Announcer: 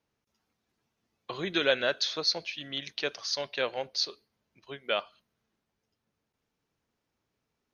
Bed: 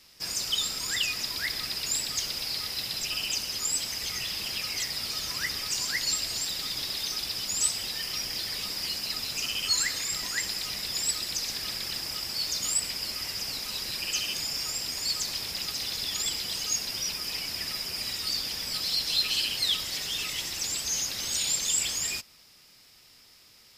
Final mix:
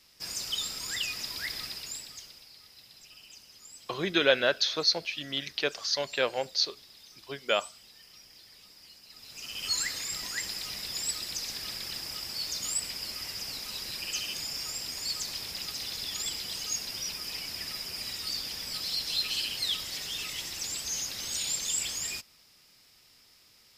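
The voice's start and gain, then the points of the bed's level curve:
2.60 s, +2.5 dB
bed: 1.62 s -4.5 dB
2.50 s -21 dB
9.06 s -21 dB
9.68 s -4 dB

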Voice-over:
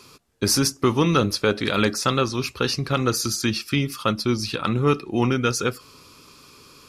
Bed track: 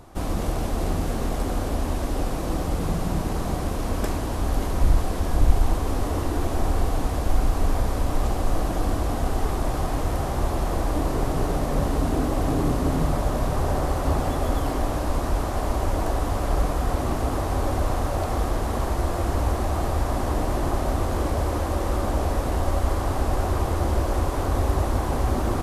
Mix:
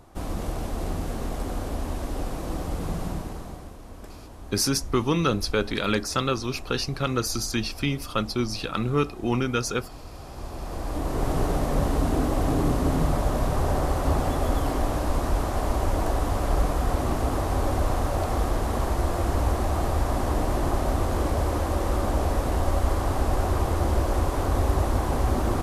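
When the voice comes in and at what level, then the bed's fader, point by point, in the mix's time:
4.10 s, -4.0 dB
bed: 3.06 s -4.5 dB
3.79 s -17 dB
10.11 s -17 dB
11.31 s -0.5 dB

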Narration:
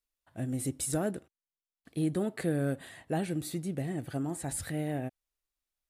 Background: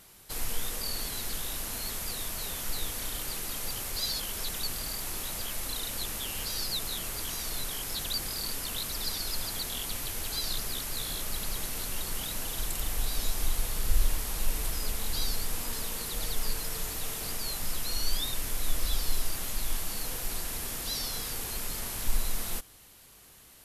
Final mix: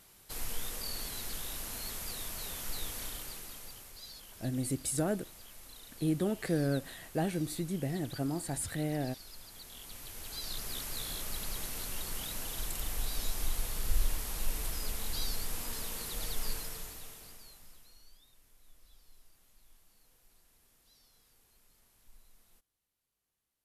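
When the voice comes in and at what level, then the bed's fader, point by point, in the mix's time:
4.05 s, -0.5 dB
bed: 3.03 s -5 dB
3.98 s -17 dB
9.47 s -17 dB
10.78 s -4.5 dB
16.54 s -4.5 dB
18.20 s -32 dB

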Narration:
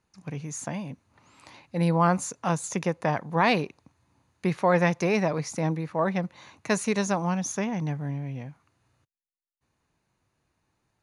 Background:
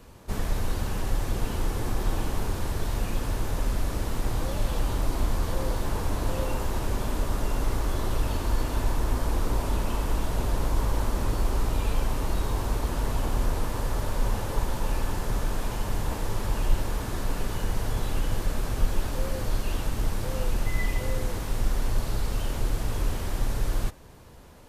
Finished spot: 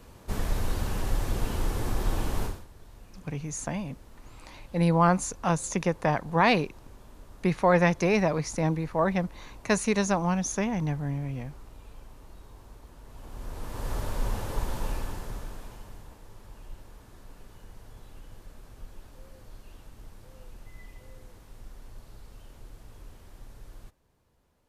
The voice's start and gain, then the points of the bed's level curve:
3.00 s, +0.5 dB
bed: 2.45 s -1 dB
2.67 s -22 dB
13.04 s -22 dB
13.92 s -3.5 dB
14.85 s -3.5 dB
16.18 s -20.5 dB

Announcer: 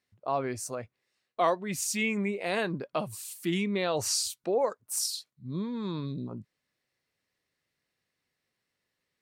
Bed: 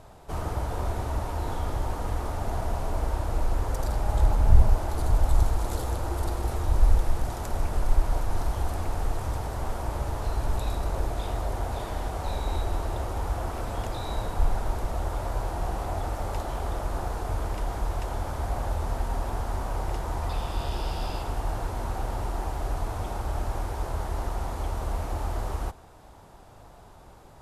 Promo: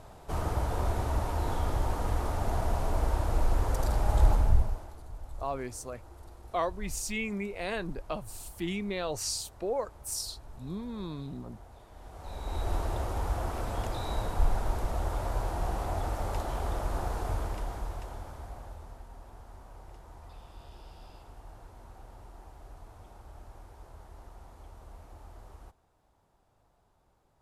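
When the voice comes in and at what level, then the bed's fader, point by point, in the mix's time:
5.15 s, -4.5 dB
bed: 4.33 s -0.5 dB
5.03 s -21 dB
11.89 s -21 dB
12.71 s -2 dB
17.28 s -2 dB
19.07 s -19.5 dB

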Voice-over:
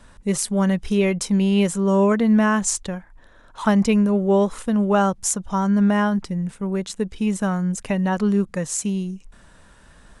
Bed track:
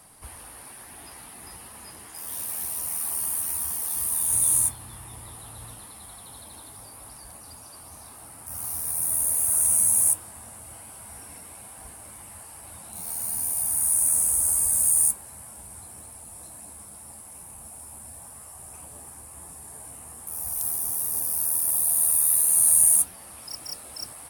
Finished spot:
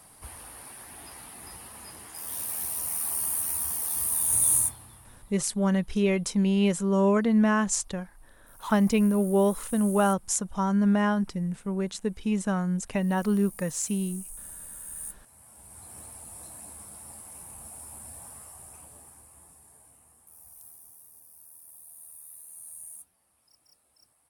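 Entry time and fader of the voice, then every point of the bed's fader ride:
5.05 s, -5.0 dB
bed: 4.54 s -1 dB
5.52 s -20.5 dB
14.90 s -20.5 dB
15.98 s -1 dB
18.31 s -1 dB
21.21 s -26.5 dB

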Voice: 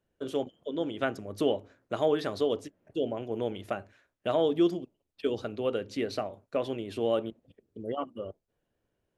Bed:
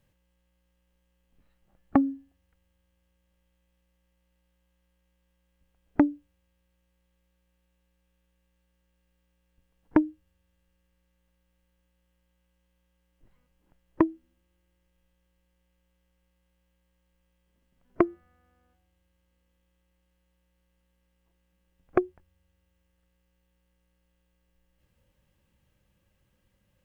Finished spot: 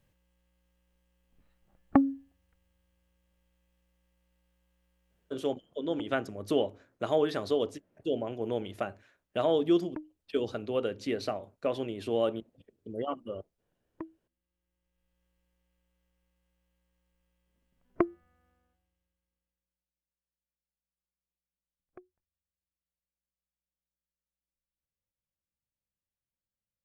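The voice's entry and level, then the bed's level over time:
5.10 s, -0.5 dB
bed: 5.23 s -1 dB
5.82 s -19.5 dB
14.23 s -19.5 dB
15.23 s -4.5 dB
18.49 s -4.5 dB
20.07 s -29 dB

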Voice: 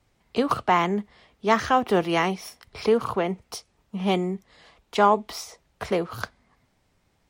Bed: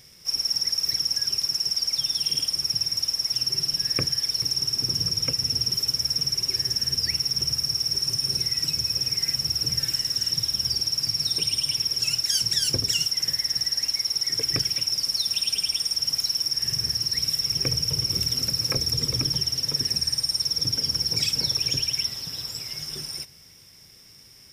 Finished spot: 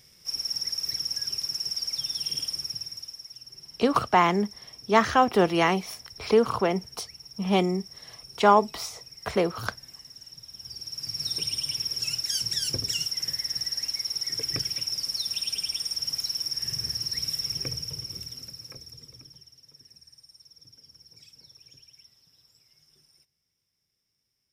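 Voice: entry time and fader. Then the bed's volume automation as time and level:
3.45 s, +0.5 dB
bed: 2.52 s -5.5 dB
3.44 s -21 dB
10.42 s -21 dB
11.27 s -5 dB
17.45 s -5 dB
19.58 s -28.5 dB

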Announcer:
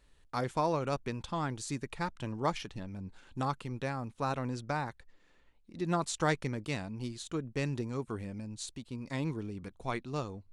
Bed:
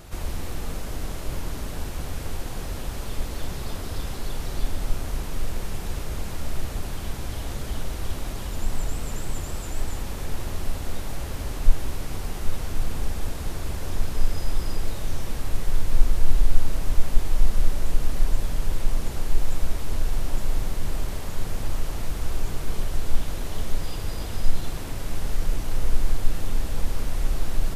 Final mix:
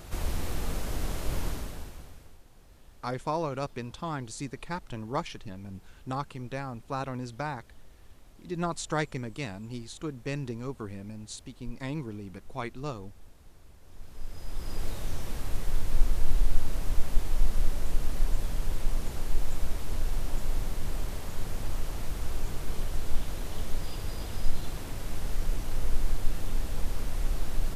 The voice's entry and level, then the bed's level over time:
2.70 s, 0.0 dB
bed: 1.47 s -1 dB
2.41 s -24.5 dB
13.82 s -24.5 dB
14.83 s -5 dB

